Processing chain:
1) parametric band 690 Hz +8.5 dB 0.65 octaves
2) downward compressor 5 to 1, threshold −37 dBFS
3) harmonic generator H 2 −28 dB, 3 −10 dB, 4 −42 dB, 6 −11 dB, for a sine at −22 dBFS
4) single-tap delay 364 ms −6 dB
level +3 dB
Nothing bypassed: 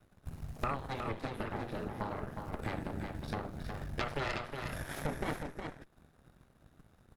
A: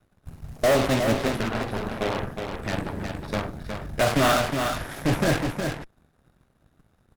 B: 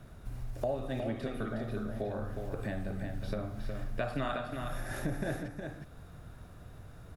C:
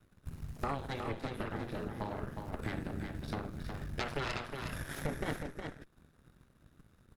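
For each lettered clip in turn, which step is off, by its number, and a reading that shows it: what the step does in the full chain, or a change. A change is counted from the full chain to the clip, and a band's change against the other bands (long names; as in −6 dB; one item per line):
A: 2, average gain reduction 8.0 dB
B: 3, change in crest factor −7.0 dB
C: 1, 1 kHz band −2.5 dB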